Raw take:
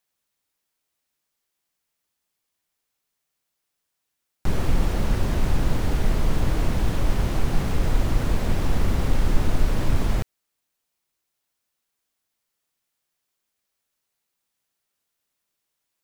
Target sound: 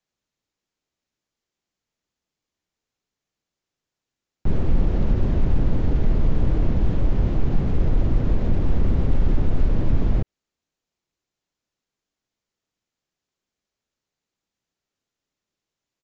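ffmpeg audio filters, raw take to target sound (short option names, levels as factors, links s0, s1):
-filter_complex "[0:a]acrossover=split=4200[s0][s1];[s1]acompressor=threshold=0.00178:ratio=4:attack=1:release=60[s2];[s0][s2]amix=inputs=2:normalize=0,acrossover=split=500|730[s3][s4][s5];[s3]aeval=exprs='0.501*sin(PI/2*1.58*val(0)/0.501)':c=same[s6];[s5]alimiter=level_in=3.35:limit=0.0631:level=0:latency=1,volume=0.299[s7];[s6][s4][s7]amix=inputs=3:normalize=0,aresample=16000,aresample=44100,volume=0.631"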